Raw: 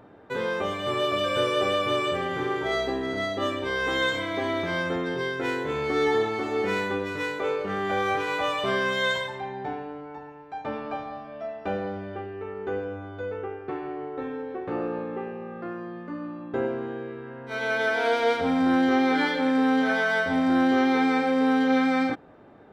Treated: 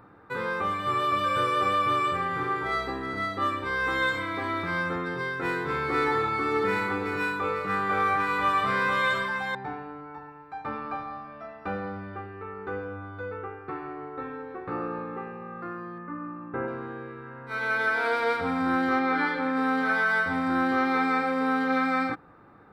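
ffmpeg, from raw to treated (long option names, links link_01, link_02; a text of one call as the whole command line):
ffmpeg -i in.wav -filter_complex "[0:a]asettb=1/sr,asplit=3[link_01][link_02][link_03];[link_01]atrim=end=4.934[link_04];[link_02]atrim=start=4.93:end=9.55,asetpts=PTS-STARTPTS,afade=type=in:duration=0.004:curve=qsin,afade=type=out:start_time=4.616:duration=0.004:curve=qsin,aecho=1:1:492:0.596,atrim=end_sample=203742[link_05];[link_03]atrim=start=9.546[link_06];[link_04][link_05]acrossfade=duration=0.004:curve1=hsin:curve2=qsin[link_07];[link_07][link_06]acrossfade=duration=0.004:curve1=qsin:curve2=hsin,asettb=1/sr,asplit=3[link_08][link_09][link_10];[link_08]atrim=end=15.984[link_11];[link_09]atrim=start=15.98:end=16.68,asetpts=PTS-STARTPTS,afade=type=in:duration=0.004:curve=qsin,afade=type=out:start_time=0.696:duration=0.004:curve=qsin,lowpass=frequency=2600:width=0.5412,lowpass=frequency=2600:width=1.3066[link_12];[link_10]atrim=start=16.676[link_13];[link_11][link_12]acrossfade=duration=0.004:curve1=hsin:curve2=qsin[link_14];[link_14][link_13]acrossfade=duration=0.004:curve1=qsin:curve2=hsin,asettb=1/sr,asplit=3[link_15][link_16][link_17];[link_15]atrim=end=18.994[link_18];[link_16]atrim=start=18.99:end=19.57,asetpts=PTS-STARTPTS,afade=type=in:duration=0.004:curve=qsin,afade=type=out:start_time=0.576:duration=0.004:curve=qsin,lowpass=frequency=3600:poles=1[link_19];[link_17]atrim=start=19.566[link_20];[link_18][link_19]acrossfade=duration=0.004:curve1=hsin:curve2=qsin[link_21];[link_21][link_20]acrossfade=duration=0.004:curve1=qsin:curve2=hsin,equalizer=frequency=250:width_type=o:width=0.33:gain=-6,equalizer=frequency=400:width_type=o:width=0.33:gain=-7,equalizer=frequency=630:width_type=o:width=0.33:gain=-11,equalizer=frequency=1250:width_type=o:width=0.33:gain=8,equalizer=frequency=3150:width_type=o:width=0.33:gain=-10,equalizer=frequency=6300:width_type=o:width=0.33:gain=-12" out.wav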